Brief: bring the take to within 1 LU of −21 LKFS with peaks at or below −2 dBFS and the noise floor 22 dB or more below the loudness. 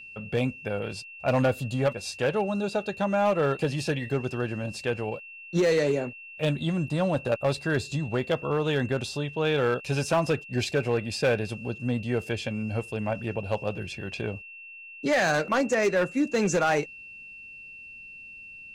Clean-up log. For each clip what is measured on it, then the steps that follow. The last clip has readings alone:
share of clipped samples 1.0%; peaks flattened at −17.5 dBFS; interfering tone 2,700 Hz; level of the tone −42 dBFS; integrated loudness −27.5 LKFS; sample peak −17.5 dBFS; target loudness −21.0 LKFS
→ clipped peaks rebuilt −17.5 dBFS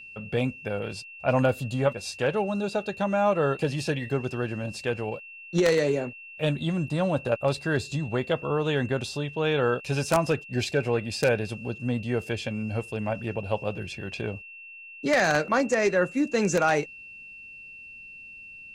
share of clipped samples 0.0%; interfering tone 2,700 Hz; level of the tone −42 dBFS
→ notch filter 2,700 Hz, Q 30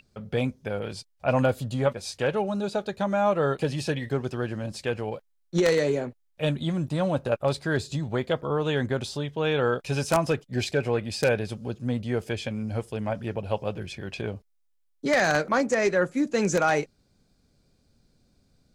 interfering tone none found; integrated loudness −27.0 LKFS; sample peak −8.5 dBFS; target loudness −21.0 LKFS
→ level +6 dB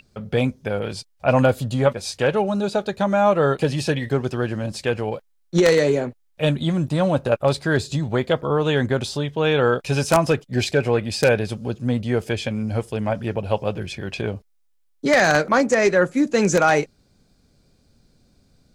integrated loudness −21.0 LKFS; sample peak −2.5 dBFS; background noise floor −62 dBFS

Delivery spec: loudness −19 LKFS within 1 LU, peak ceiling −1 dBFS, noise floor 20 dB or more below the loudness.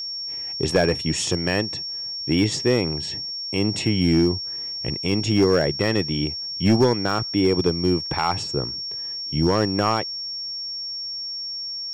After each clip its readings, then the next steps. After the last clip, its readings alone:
share of clipped samples 0.4%; peaks flattened at −10.5 dBFS; interfering tone 5,500 Hz; level of the tone −28 dBFS; integrated loudness −22.5 LKFS; sample peak −10.5 dBFS; target loudness −19.0 LKFS
→ clipped peaks rebuilt −10.5 dBFS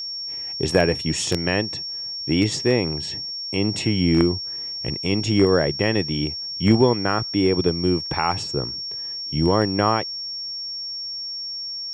share of clipped samples 0.0%; interfering tone 5,500 Hz; level of the tone −28 dBFS
→ notch filter 5,500 Hz, Q 30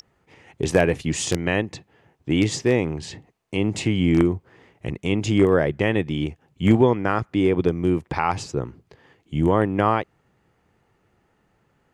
interfering tone none found; integrated loudness −22.0 LKFS; sample peak −1.5 dBFS; target loudness −19.0 LKFS
→ level +3 dB
brickwall limiter −1 dBFS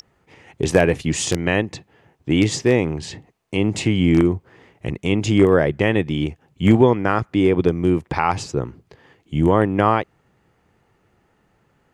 integrated loudness −19.0 LKFS; sample peak −1.0 dBFS; background noise floor −64 dBFS

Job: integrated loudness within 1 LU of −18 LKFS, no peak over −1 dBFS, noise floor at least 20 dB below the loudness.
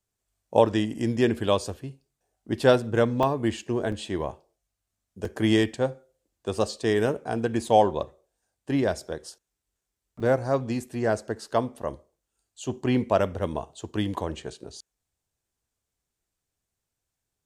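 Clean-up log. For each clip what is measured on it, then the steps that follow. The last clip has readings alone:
number of dropouts 5; longest dropout 3.1 ms; integrated loudness −26.0 LKFS; sample peak −5.5 dBFS; target loudness −18.0 LKFS
→ repair the gap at 0:03.23/0:03.92/0:05.25/0:09.00/0:10.20, 3.1 ms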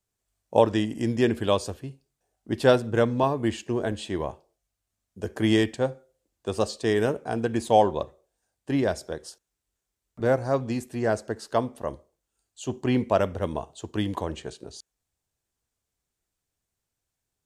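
number of dropouts 0; integrated loudness −26.0 LKFS; sample peak −5.5 dBFS; target loudness −18.0 LKFS
→ level +8 dB
brickwall limiter −1 dBFS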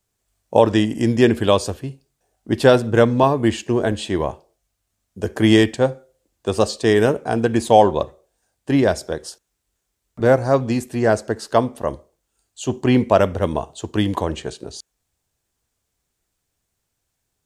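integrated loudness −18.5 LKFS; sample peak −1.0 dBFS; background noise floor −76 dBFS

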